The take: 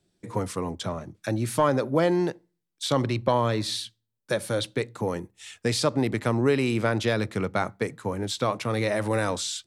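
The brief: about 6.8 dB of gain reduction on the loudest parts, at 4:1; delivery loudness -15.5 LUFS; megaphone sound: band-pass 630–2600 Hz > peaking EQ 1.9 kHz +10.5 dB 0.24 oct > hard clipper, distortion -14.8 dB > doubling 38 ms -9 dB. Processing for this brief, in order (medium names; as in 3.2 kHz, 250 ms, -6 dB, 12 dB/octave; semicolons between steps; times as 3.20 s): compression 4:1, threshold -25 dBFS; band-pass 630–2600 Hz; peaking EQ 1.9 kHz +10.5 dB 0.24 oct; hard clipper -25.5 dBFS; doubling 38 ms -9 dB; trim +20 dB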